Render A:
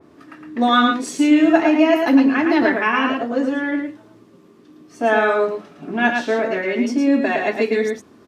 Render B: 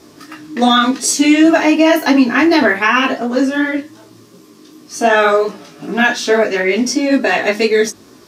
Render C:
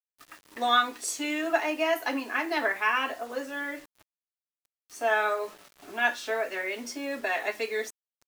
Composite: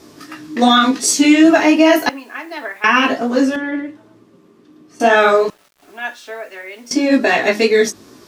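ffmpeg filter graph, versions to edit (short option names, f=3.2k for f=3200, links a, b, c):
-filter_complex "[2:a]asplit=2[a][b];[1:a]asplit=4[c][d][e][f];[c]atrim=end=2.092[g];[a]atrim=start=2.088:end=2.842[h];[d]atrim=start=2.838:end=3.562[i];[0:a]atrim=start=3.558:end=5.002[j];[e]atrim=start=4.998:end=5.502[k];[b]atrim=start=5.498:end=6.912[l];[f]atrim=start=6.908[m];[g][h]acrossfade=d=0.004:c1=hsin:c2=hsin[n];[n][i]acrossfade=d=0.004:c1=hsin:c2=hsin[o];[o][j]acrossfade=d=0.004:c1=hsin:c2=hsin[p];[p][k]acrossfade=d=0.004:c1=hsin:c2=hsin[q];[q][l]acrossfade=d=0.004:c1=hsin:c2=hsin[r];[r][m]acrossfade=d=0.004:c1=hsin:c2=hsin"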